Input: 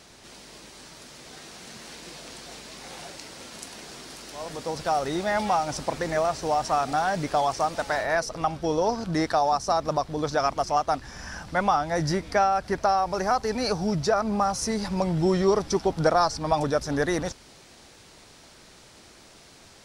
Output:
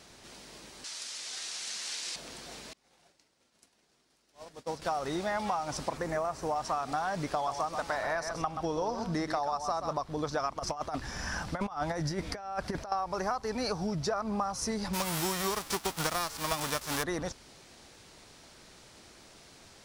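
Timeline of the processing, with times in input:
0.84–2.16 s: frequency weighting ITU-R 468
2.73–4.82 s: expander -28 dBFS
5.97–6.56 s: peaking EQ 3.8 kHz -7 dB 1.4 oct
7.32–9.97 s: delay 129 ms -9.5 dB
10.59–12.92 s: compressor with a negative ratio -28 dBFS, ratio -0.5
14.93–17.02 s: formants flattened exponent 0.3
whole clip: dynamic bell 1.1 kHz, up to +6 dB, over -40 dBFS, Q 2.7; compression, threshold -25 dBFS; trim -3.5 dB

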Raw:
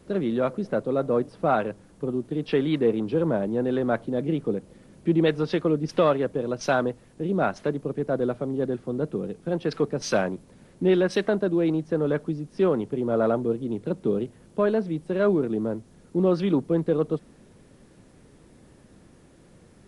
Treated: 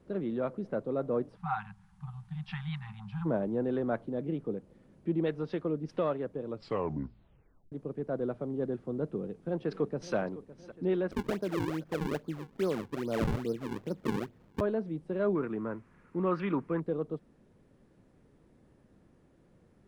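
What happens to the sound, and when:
1.36–3.26 s: spectral selection erased 210–740 Hz
6.44 s: tape stop 1.28 s
9.04–10.15 s: echo throw 560 ms, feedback 65%, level -14.5 dB
11.11–14.61 s: decimation with a swept rate 40×, swing 160% 2.4 Hz
15.35–16.80 s: high-order bell 1.6 kHz +13.5 dB
whole clip: treble shelf 3.1 kHz -12 dB; gain riding 2 s; trim -8.5 dB

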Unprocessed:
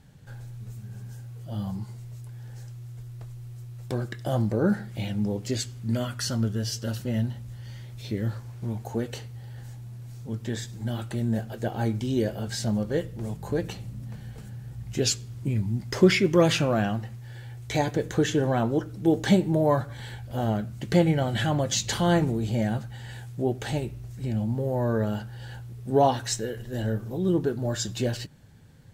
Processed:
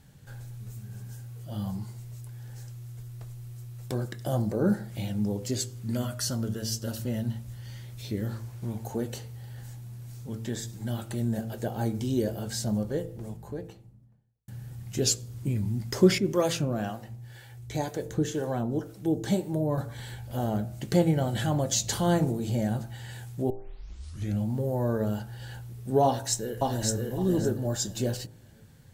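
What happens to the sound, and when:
12.44–14.48 s: studio fade out
16.18–19.78 s: harmonic tremolo 2 Hz, crossover 410 Hz
23.50 s: tape start 0.90 s
26.05–27.01 s: echo throw 560 ms, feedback 20%, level -1.5 dB
whole clip: treble shelf 7.5 kHz +8 dB; de-hum 56.1 Hz, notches 17; dynamic bell 2.3 kHz, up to -7 dB, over -45 dBFS, Q 0.8; trim -1 dB

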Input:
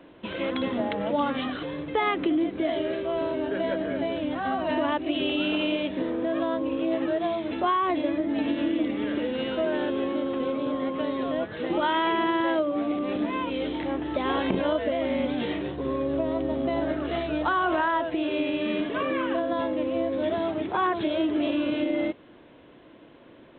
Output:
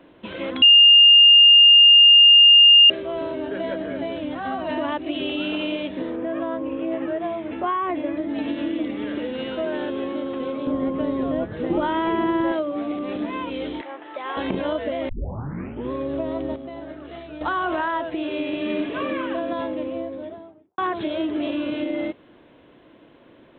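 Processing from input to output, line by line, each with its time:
0.62–2.90 s: bleep 2.82 kHz -7.5 dBFS
6.16–8.17 s: low-pass 2.8 kHz 24 dB/octave
10.67–12.52 s: tilt EQ -3 dB/octave
13.81–14.37 s: band-pass 670–2700 Hz
15.09 s: tape start 0.82 s
16.56–17.41 s: gain -9 dB
18.12–18.75 s: echo throw 390 ms, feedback 45%, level -7.5 dB
19.59–20.78 s: studio fade out

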